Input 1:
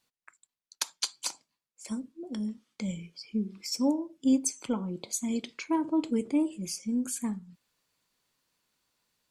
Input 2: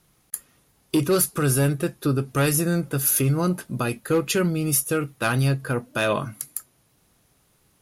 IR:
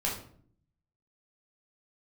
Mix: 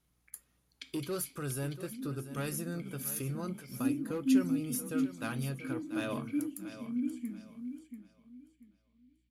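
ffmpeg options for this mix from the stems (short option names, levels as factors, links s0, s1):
-filter_complex "[0:a]asplit=3[s0][s1][s2];[s0]bandpass=f=270:t=q:w=8,volume=1[s3];[s1]bandpass=f=2290:t=q:w=8,volume=0.501[s4];[s2]bandpass=f=3010:t=q:w=8,volume=0.355[s5];[s3][s4][s5]amix=inputs=3:normalize=0,bandreject=f=6400:w=7.4,aeval=exprs='val(0)+0.0001*(sin(2*PI*60*n/s)+sin(2*PI*2*60*n/s)/2+sin(2*PI*3*60*n/s)/3+sin(2*PI*4*60*n/s)/4+sin(2*PI*5*60*n/s)/5)':c=same,volume=1.06,asplit=3[s6][s7][s8];[s7]volume=0.211[s9];[s8]volume=0.422[s10];[1:a]volume=0.158,asplit=3[s11][s12][s13];[s12]volume=0.237[s14];[s13]apad=whole_len=410338[s15];[s6][s15]sidechaincompress=threshold=0.0112:ratio=8:attack=16:release=1300[s16];[2:a]atrim=start_sample=2205[s17];[s9][s17]afir=irnorm=-1:irlink=0[s18];[s10][s14]amix=inputs=2:normalize=0,aecho=0:1:687|1374|2061|2748:1|0.27|0.0729|0.0197[s19];[s16][s11][s18][s19]amix=inputs=4:normalize=0"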